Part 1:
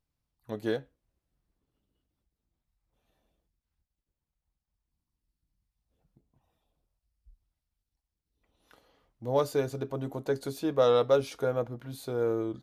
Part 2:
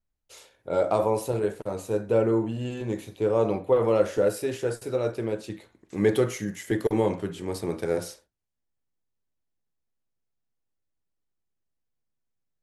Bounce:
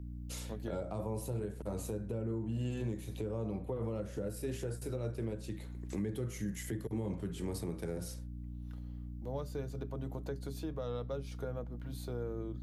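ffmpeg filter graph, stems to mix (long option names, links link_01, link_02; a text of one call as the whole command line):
ffmpeg -i stem1.wav -i stem2.wav -filter_complex "[0:a]volume=-5.5dB[link_01];[1:a]highpass=98,highshelf=frequency=9400:gain=10.5,volume=1.5dB[link_02];[link_01][link_02]amix=inputs=2:normalize=0,aeval=exprs='val(0)+0.00794*(sin(2*PI*60*n/s)+sin(2*PI*2*60*n/s)/2+sin(2*PI*3*60*n/s)/3+sin(2*PI*4*60*n/s)/4+sin(2*PI*5*60*n/s)/5)':channel_layout=same,acrossover=split=220[link_03][link_04];[link_04]acompressor=threshold=-42dB:ratio=3[link_05];[link_03][link_05]amix=inputs=2:normalize=0,alimiter=level_in=4dB:limit=-24dB:level=0:latency=1:release=261,volume=-4dB" out.wav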